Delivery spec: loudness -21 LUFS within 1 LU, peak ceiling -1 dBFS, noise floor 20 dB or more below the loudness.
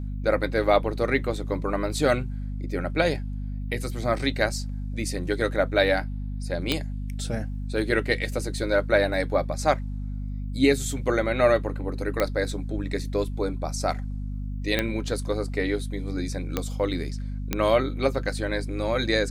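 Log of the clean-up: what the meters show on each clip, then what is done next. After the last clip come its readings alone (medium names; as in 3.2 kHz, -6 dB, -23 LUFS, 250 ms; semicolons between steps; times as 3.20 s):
clicks found 5; hum 50 Hz; highest harmonic 250 Hz; hum level -29 dBFS; loudness -26.5 LUFS; peak level -6.0 dBFS; loudness target -21.0 LUFS
-> de-click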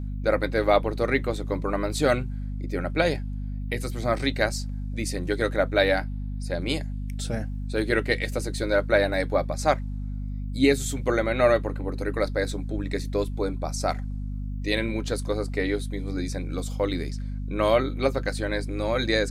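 clicks found 0; hum 50 Hz; highest harmonic 250 Hz; hum level -29 dBFS
-> de-hum 50 Hz, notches 5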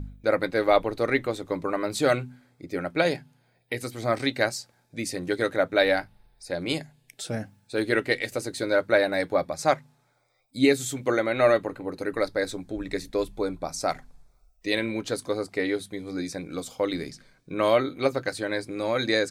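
hum not found; loudness -27.0 LUFS; peak level -6.0 dBFS; loudness target -21.0 LUFS
-> trim +6 dB; peak limiter -1 dBFS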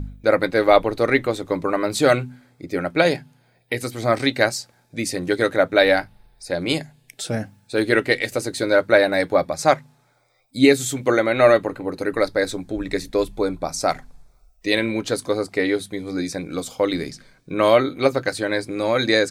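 loudness -21.0 LUFS; peak level -1.0 dBFS; noise floor -60 dBFS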